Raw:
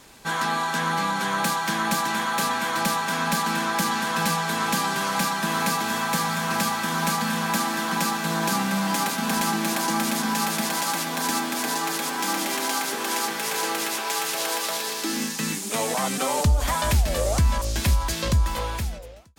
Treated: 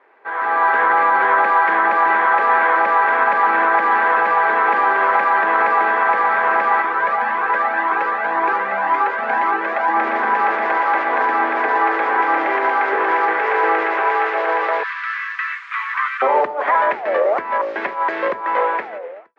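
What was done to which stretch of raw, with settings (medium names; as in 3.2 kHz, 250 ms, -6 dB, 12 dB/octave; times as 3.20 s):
6.82–9.96 s: Shepard-style flanger rising 1.9 Hz
14.83–16.22 s: steep high-pass 1.1 kHz 72 dB/octave
whole clip: peak limiter -17.5 dBFS; elliptic band-pass 390–2000 Hz, stop band 80 dB; level rider gain up to 14 dB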